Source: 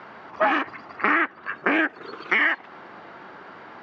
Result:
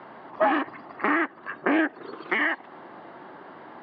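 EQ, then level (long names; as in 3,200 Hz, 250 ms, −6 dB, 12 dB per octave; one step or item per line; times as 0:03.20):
loudspeaker in its box 180–4,300 Hz, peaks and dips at 200 Hz −5 dB, 450 Hz −4 dB, 1,400 Hz −6 dB, 2,400 Hz −6 dB
spectral tilt −2 dB per octave
0.0 dB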